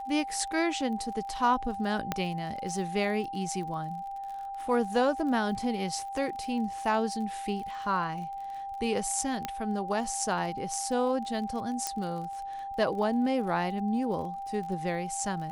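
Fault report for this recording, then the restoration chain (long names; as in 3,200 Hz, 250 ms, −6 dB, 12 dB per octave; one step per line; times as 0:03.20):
surface crackle 34 per second −39 dBFS
whistle 790 Hz −35 dBFS
0:02.12: click −13 dBFS
0:09.45: click −16 dBFS
0:11.87: click −14 dBFS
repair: click removal
notch filter 790 Hz, Q 30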